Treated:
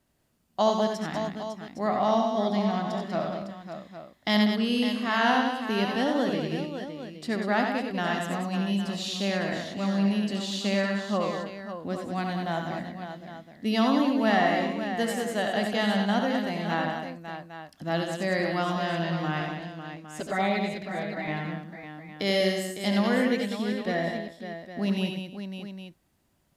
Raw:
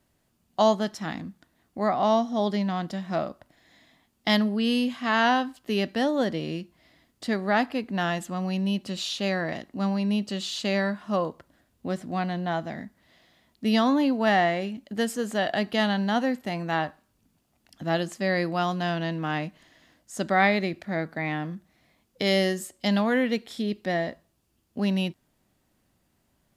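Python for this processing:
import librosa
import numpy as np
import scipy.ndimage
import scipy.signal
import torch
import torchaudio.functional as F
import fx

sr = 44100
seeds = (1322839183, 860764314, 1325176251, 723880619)

y = fx.high_shelf(x, sr, hz=fx.line((12.17, 5100.0), (12.66, 9200.0)), db=10.5, at=(12.17, 12.66), fade=0.02)
y = fx.env_flanger(y, sr, rest_ms=7.8, full_db=-16.5, at=(19.4, 21.28))
y = fx.echo_multitap(y, sr, ms=(71, 90, 193, 303, 555, 811), db=(-8.5, -6.0, -7.0, -18.5, -9.0, -12.5))
y = y * 10.0 ** (-3.0 / 20.0)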